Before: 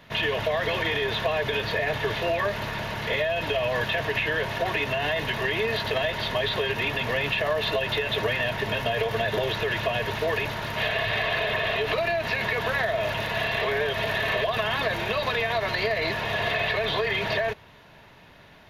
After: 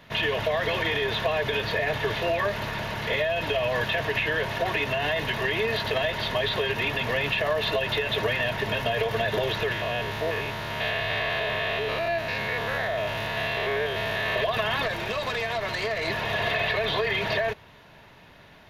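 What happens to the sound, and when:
9.72–14.36 s: spectrogram pixelated in time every 100 ms
14.86–16.08 s: valve stage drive 21 dB, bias 0.45

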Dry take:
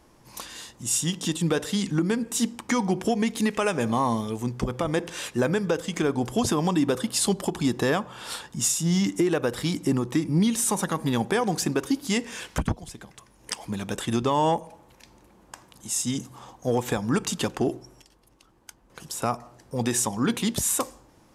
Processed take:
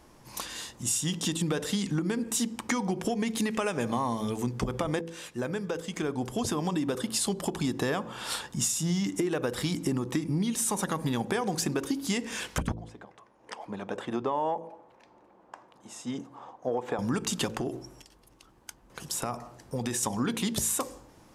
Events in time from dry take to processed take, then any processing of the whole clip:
5.01–8.31 s: fade in, from -12.5 dB
12.74–16.99 s: band-pass filter 680 Hz, Q 0.85
17.60–20.03 s: compression 5:1, threshold -28 dBFS
whole clip: de-hum 55.42 Hz, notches 10; compression, threshold -27 dBFS; trim +1.5 dB

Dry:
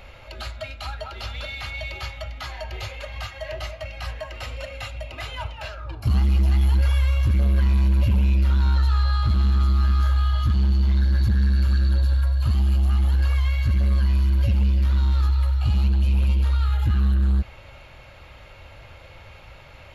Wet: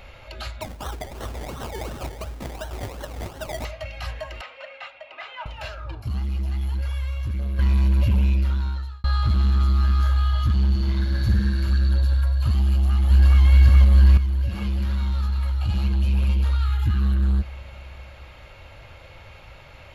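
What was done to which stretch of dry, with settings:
0.61–3.65 s: decimation with a swept rate 26×, swing 60% 2.8 Hz
4.41–5.46 s: band-pass 690–2500 Hz
6.02–7.59 s: gain -7.5 dB
8.25–9.04 s: fade out
10.70–11.70 s: flutter echo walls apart 9.2 m, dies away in 0.67 s
12.68–13.42 s: echo throw 420 ms, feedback 75%, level -0.5 dB
14.17–15.69 s: compression, threshold -20 dBFS
16.57–17.02 s: peaking EQ 590 Hz -12.5 dB 0.51 oct

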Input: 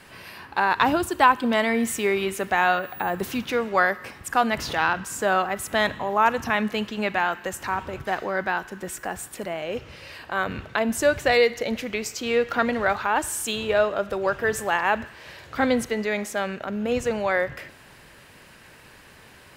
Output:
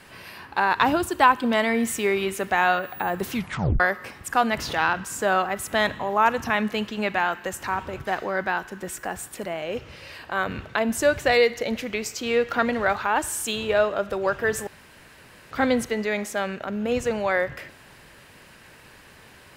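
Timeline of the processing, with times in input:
3.34 s: tape stop 0.46 s
14.67–15.51 s: room tone

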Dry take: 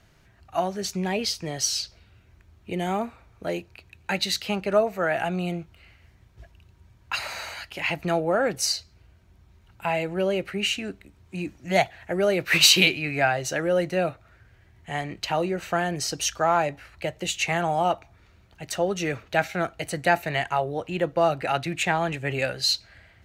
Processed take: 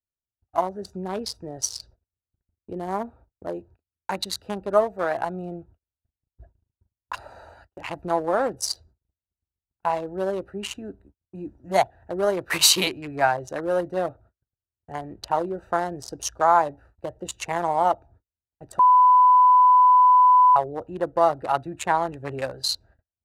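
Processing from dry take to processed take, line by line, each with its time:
18.79–20.56 s: bleep 1 kHz -19 dBFS
whole clip: local Wiener filter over 41 samples; fifteen-band graphic EQ 160 Hz -8 dB, 1 kHz +11 dB, 2.5 kHz -9 dB, 10 kHz +8 dB; gate -50 dBFS, range -40 dB

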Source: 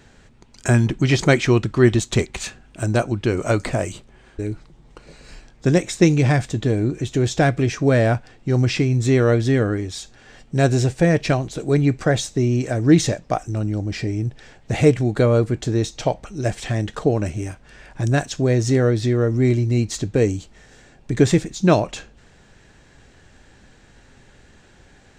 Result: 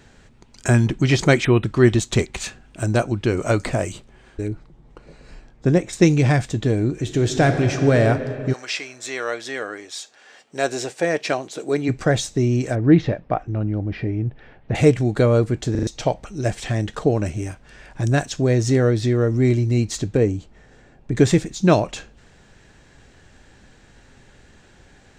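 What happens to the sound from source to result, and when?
1.44–1.64 s: spectral selection erased 4–8.2 kHz
4.48–5.93 s: treble shelf 2.3 kHz -10 dB
6.94–7.99 s: reverb throw, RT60 2.9 s, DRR 5.5 dB
8.52–11.88 s: high-pass 1.1 kHz -> 290 Hz
12.75–14.75 s: Bessel low-pass 2.2 kHz, order 4
15.71 s: stutter in place 0.04 s, 4 plays
20.17–21.16 s: treble shelf 2.7 kHz -12 dB

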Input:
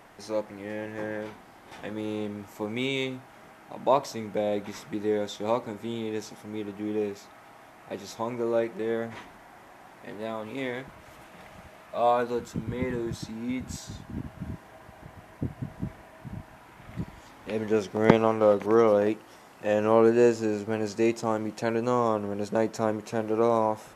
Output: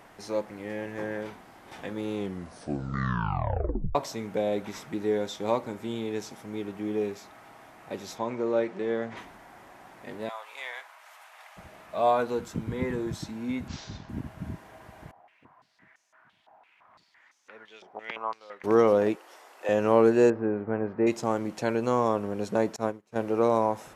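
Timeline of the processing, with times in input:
2.15 s: tape stop 1.80 s
8.18–9.17 s: band-pass 110–6000 Hz
10.29–11.57 s: high-pass 760 Hz 24 dB/octave
13.68–14.09 s: CVSD coder 32 kbps
15.11–18.64 s: step-sequenced band-pass 5.9 Hz 780–6200 Hz
19.15–19.69 s: high-pass 400 Hz 24 dB/octave
20.30–21.07 s: low-pass 1.8 kHz 24 dB/octave
22.76–23.16 s: upward expansion 2.5:1, over -41 dBFS

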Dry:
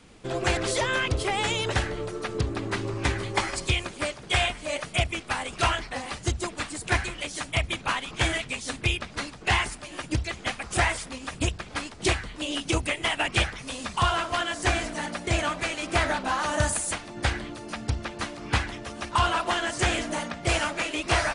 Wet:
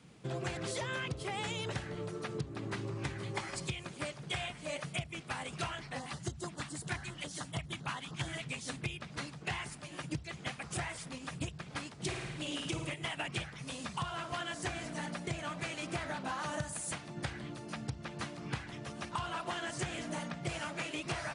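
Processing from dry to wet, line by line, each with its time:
5.99–8.38 s: LFO notch square 7.2 Hz 480–2400 Hz
12.02–12.94 s: flutter echo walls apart 9.3 m, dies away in 0.68 s
whole clip: peaking EQ 150 Hz +15 dB 0.48 oct; compression 6:1, threshold -26 dBFS; high-pass 78 Hz; trim -8 dB

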